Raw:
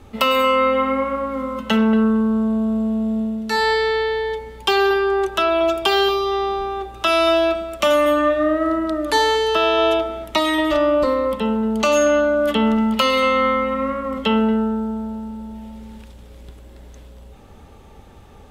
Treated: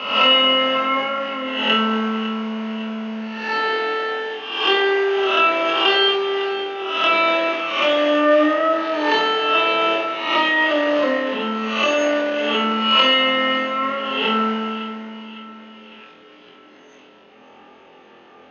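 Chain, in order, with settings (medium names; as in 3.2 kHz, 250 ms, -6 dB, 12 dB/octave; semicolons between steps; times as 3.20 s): reverse spectral sustain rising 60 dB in 0.73 s; two-band feedback delay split 1.3 kHz, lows 142 ms, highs 555 ms, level -15.5 dB; in parallel at -11.5 dB: sample-rate reducer 1.2 kHz, jitter 20%; on the sum: rippled Chebyshev low-pass 6.6 kHz, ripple 3 dB; three-band isolator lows -22 dB, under 240 Hz, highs -13 dB, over 2.8 kHz; on a send: flutter echo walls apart 4 m, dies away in 0.43 s; on the sum: transient shaper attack -4 dB, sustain +2 dB; high-pass 150 Hz 12 dB/octave; peaking EQ 2.9 kHz +10.5 dB 0.48 oct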